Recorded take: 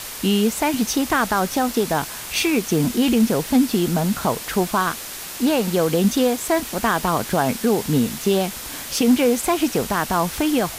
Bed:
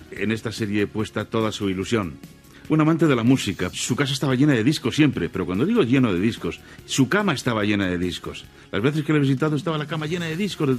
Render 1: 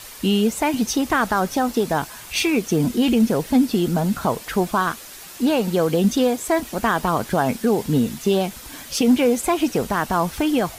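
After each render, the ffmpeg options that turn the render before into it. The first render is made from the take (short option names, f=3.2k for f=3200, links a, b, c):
-af "afftdn=nr=8:nf=-33"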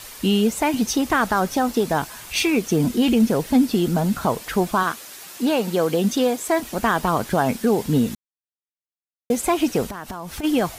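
-filter_complex "[0:a]asettb=1/sr,asplit=3[a][b][c];[a]atrim=end=4.834[d];[b]atrim=start=4.83:end=6.64,asetpts=PTS-STARTPTS,afade=t=in:d=0.004:c=qsin,afade=t=out:st=1.806:d=0.004:c=qsin,highpass=f=200:p=1[e];[c]atrim=start=6.636[f];[d][e]acrossfade=d=0.004:c1=hsin:c2=qsin[g];[g][f]acrossfade=d=0.004:c1=qsin:c2=hsin,asplit=3[h][i][j];[h]afade=t=out:st=9.88:d=0.02[k];[i]acompressor=threshold=-27dB:ratio=16:attack=3.2:release=140:knee=1:detection=peak,afade=t=in:st=9.88:d=0.02,afade=t=out:st=10.43:d=0.02[l];[j]afade=t=in:st=10.43:d=0.02[m];[k][l][m]amix=inputs=3:normalize=0,asplit=3[n][o][p];[n]atrim=end=8.15,asetpts=PTS-STARTPTS,afade=t=out:st=8.146:d=0.004:c=hsin[q];[o]atrim=start=8.15:end=9.3,asetpts=PTS-STARTPTS,volume=0[r];[p]atrim=start=9.3,asetpts=PTS-STARTPTS,afade=t=in:d=0.004:c=hsin[s];[q][r][s]concat=n=3:v=0:a=1"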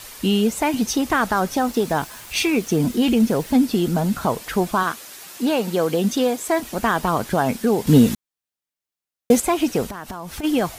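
-filter_complex "[0:a]asettb=1/sr,asplit=3[a][b][c];[a]atrim=end=1.594[d];[b]atrim=start=1.59:end=3.62,asetpts=PTS-STARTPTS,afade=t=in:d=0.004:c=qsin,afade=t=out:st=2.026:d=0.004:c=qsin,aeval=exprs='val(0)*gte(abs(val(0)),0.01)':c=same[e];[c]atrim=start=3.616[f];[d][e]acrossfade=d=0.004:c1=hsin:c2=qsin[g];[g][f]acrossfade=d=0.004:c1=qsin:c2=hsin,asplit=3[h][i][j];[h]atrim=end=7.872[k];[i]atrim=start=7.868:end=9.402,asetpts=PTS-STARTPTS,volume=6.5dB[l];[j]atrim=start=9.398[m];[k][l]acrossfade=d=0.004:c1=hsin:c2=hsin[n];[n][m]acrossfade=d=0.004:c1=hsin:c2=hsin"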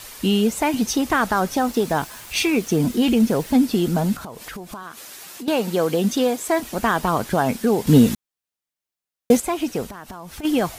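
-filter_complex "[0:a]asettb=1/sr,asplit=3[a][b][c];[a]atrim=end=4.164[d];[b]atrim=start=4.16:end=5.48,asetpts=PTS-STARTPTS,afade=t=in:d=0.004:c=qsin,afade=t=out:st=1.316:d=0.004:c=qsin,acompressor=threshold=-31dB:ratio=8:attack=3.2:release=140:knee=1:detection=peak[e];[c]atrim=start=5.476[f];[d][e]acrossfade=d=0.004:c1=hsin:c2=qsin[g];[g][f]acrossfade=d=0.004:c1=qsin:c2=hsin,asplit=3[h][i][j];[h]atrim=end=9.372[k];[i]atrim=start=9.368:end=10.452,asetpts=PTS-STARTPTS,volume=-4dB[l];[j]atrim=start=10.448[m];[k][l]acrossfade=d=0.004:c1=hsin:c2=hsin[n];[n][m]acrossfade=d=0.004:c1=hsin:c2=hsin"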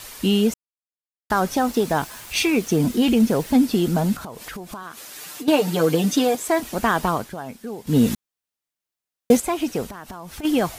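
-filter_complex "[0:a]asettb=1/sr,asplit=3[a][b][c];[a]atrim=end=5.154[d];[b]atrim=start=5.15:end=6.35,asetpts=PTS-STARTPTS,afade=t=in:d=0.004:c=qsin,afade=t=out:st=1.196:d=0.004:c=qsin,aecho=1:1:6.7:0.83,atrim=end_sample=52920[e];[c]atrim=start=6.346[f];[d][e]acrossfade=d=0.004:c1=hsin:c2=qsin[g];[g][f]acrossfade=d=0.004:c1=qsin:c2=hsin,asplit=5[h][i][j][k][l];[h]atrim=end=0.54,asetpts=PTS-STARTPTS,afade=t=out:st=0.536:d=0.004:c=hsin[m];[i]atrim=start=0.54:end=1.3,asetpts=PTS-STARTPTS,volume=0[n];[j]atrim=start=1.3:end=7.35,asetpts=PTS-STARTPTS,afade=t=in:d=0.004:c=hsin,afade=t=out:st=5.76:d=0.29:silence=0.211349[o];[k]atrim=start=7.35:end=7.84,asetpts=PTS-STARTPTS,volume=-13.5dB[p];[l]atrim=start=7.84,asetpts=PTS-STARTPTS,afade=t=in:d=0.29:silence=0.211349[q];[m][n][o][p][q]concat=n=5:v=0:a=1"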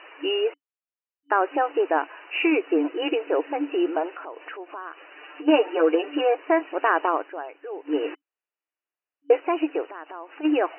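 -af "bandreject=f=2.1k:w=24,afftfilt=real='re*between(b*sr/4096,280,3000)':imag='im*between(b*sr/4096,280,3000)':win_size=4096:overlap=0.75"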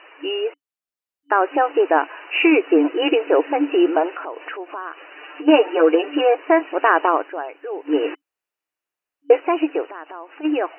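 -af "dynaudnorm=f=520:g=5:m=9dB"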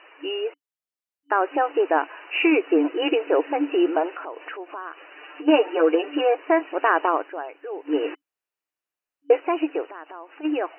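-af "volume=-4dB"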